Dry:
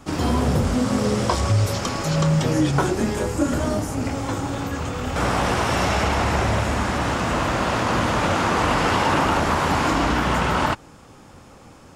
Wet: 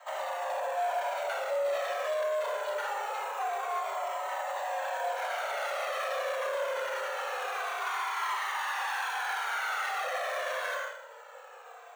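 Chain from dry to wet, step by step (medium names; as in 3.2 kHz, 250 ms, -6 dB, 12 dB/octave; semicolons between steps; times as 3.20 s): 7.80–10.03 s: elliptic high-pass 310 Hz; Schroeder reverb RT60 0.59 s, combs from 25 ms, DRR 0.5 dB; frequency shift +69 Hz; careless resampling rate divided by 6×, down none, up zero stuff; distance through air 320 m; overload inside the chain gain 21 dB; frequency shift +390 Hz; band-stop 5 kHz, Q 7; peak limiter -21 dBFS, peak gain reduction 8.5 dB; Shepard-style flanger falling 0.24 Hz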